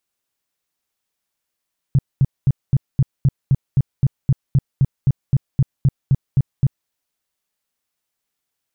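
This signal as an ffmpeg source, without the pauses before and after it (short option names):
-f lavfi -i "aevalsrc='0.335*sin(2*PI*135*mod(t,0.26))*lt(mod(t,0.26),5/135)':d=4.94:s=44100"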